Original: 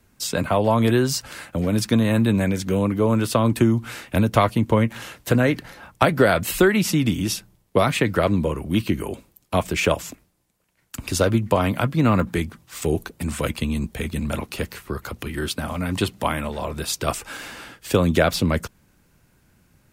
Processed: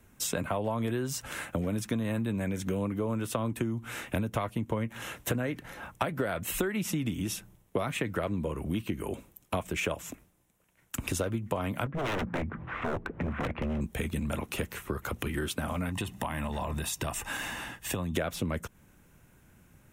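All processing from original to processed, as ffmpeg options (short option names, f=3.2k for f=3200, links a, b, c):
-filter_complex "[0:a]asettb=1/sr,asplit=3[a][b][c];[a]atrim=end=11.864[d];[b]atrim=start=11.86:end=13.81,asetpts=PTS-STARTPTS,afade=t=in:d=0.004:c=qsin,afade=t=out:st=1.946:d=0.004:c=qsin,lowpass=f=2k:w=0.5412,lowpass=f=2k:w=1.3066,acompressor=mode=upward:threshold=-25dB:ratio=2.5:attack=3.2:release=140:knee=2.83:detection=peak,aeval=exprs='0.0841*(abs(mod(val(0)/0.0841+3,4)-2)-1)':c=same[e];[c]atrim=start=13.806[f];[d][e]acrossfade=d=0.004:c1=hsin:c2=qsin[g];[g][f]acrossfade=d=0.004:c1=qsin:c2=hsin,asettb=1/sr,asplit=3[h][i][j];[h]atrim=end=15.894[k];[i]atrim=start=15.89:end=18.16,asetpts=PTS-STARTPTS,afade=t=in:d=0.004:c=qsin,afade=t=out:st=2.266:d=0.004:c=qsin,aecho=1:1:1.1:0.46,atrim=end_sample=100107,acompressor=threshold=-26dB:ratio=4:attack=3.2:release=140:knee=1:detection=peak[l];[j]atrim=start=18.156[m];[k][l]acrossfade=d=0.004:c1=hsin:c2=qsin[n];[n][m]acrossfade=d=0.004:c1=qsin:c2=hsin,equalizer=f=4.6k:t=o:w=0.39:g=-11,acompressor=threshold=-29dB:ratio=5"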